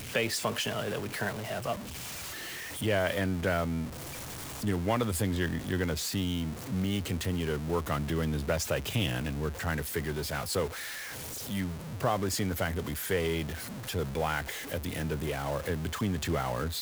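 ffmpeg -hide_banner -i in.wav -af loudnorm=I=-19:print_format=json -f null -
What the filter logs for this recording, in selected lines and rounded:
"input_i" : "-32.3",
"input_tp" : "-15.5",
"input_lra" : "1.4",
"input_thresh" : "-42.3",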